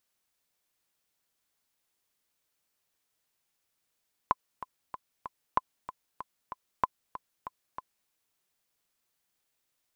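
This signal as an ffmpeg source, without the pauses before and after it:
-f lavfi -i "aevalsrc='pow(10,(-10-14.5*gte(mod(t,4*60/190),60/190))/20)*sin(2*PI*1020*mod(t,60/190))*exp(-6.91*mod(t,60/190)/0.03)':d=3.78:s=44100"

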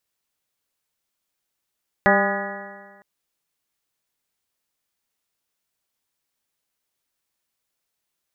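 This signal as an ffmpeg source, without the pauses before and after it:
-f lavfi -i "aevalsrc='0.1*pow(10,-3*t/1.51)*sin(2*PI*197.23*t)+0.0794*pow(10,-3*t/1.51)*sin(2*PI*395.81*t)+0.141*pow(10,-3*t/1.51)*sin(2*PI*597.09*t)+0.126*pow(10,-3*t/1.51)*sin(2*PI*802.37*t)+0.0531*pow(10,-3*t/1.51)*sin(2*PI*1012.92*t)+0.0708*pow(10,-3*t/1.51)*sin(2*PI*1229.96*t)+0.0531*pow(10,-3*t/1.51)*sin(2*PI*1454.63*t)+0.112*pow(10,-3*t/1.51)*sin(2*PI*1688.01*t)+0.106*pow(10,-3*t/1.51)*sin(2*PI*1931.11*t)':d=0.96:s=44100"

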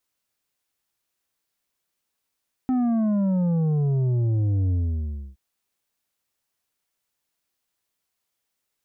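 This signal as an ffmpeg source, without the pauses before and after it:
-f lavfi -i "aevalsrc='0.1*clip((2.67-t)/0.65,0,1)*tanh(2.24*sin(2*PI*260*2.67/log(65/260)*(exp(log(65/260)*t/2.67)-1)))/tanh(2.24)':d=2.67:s=44100"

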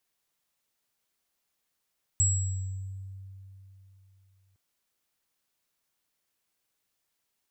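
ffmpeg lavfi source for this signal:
-f lavfi -i "aevalsrc='0.0708*pow(10,-3*t/3.35)*sin(2*PI*96.3*t)+0.0944*pow(10,-3*t/0.9)*sin(2*PI*7710*t)':d=2.36:s=44100"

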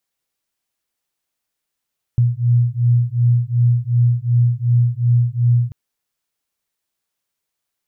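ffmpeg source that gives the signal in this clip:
-f lavfi -i "aevalsrc='0.168*(sin(2*PI*119*t)+sin(2*PI*121.7*t))':d=3.54:s=44100"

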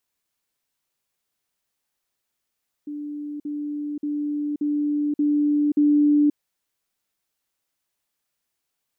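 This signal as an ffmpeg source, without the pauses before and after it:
-f lavfi -i "aevalsrc='pow(10,(-29+3*floor(t/0.58))/20)*sin(2*PI*294*t)*clip(min(mod(t,0.58),0.53-mod(t,0.58))/0.005,0,1)':d=3.48:s=44100"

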